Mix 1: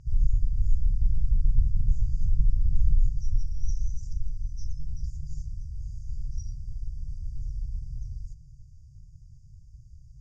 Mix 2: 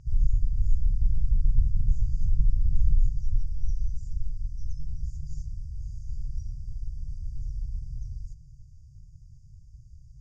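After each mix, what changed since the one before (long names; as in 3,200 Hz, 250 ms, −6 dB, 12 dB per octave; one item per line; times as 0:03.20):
speech −11.0 dB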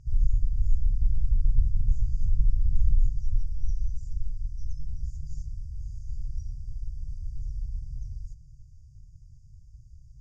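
background: add phaser with its sweep stopped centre 750 Hz, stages 4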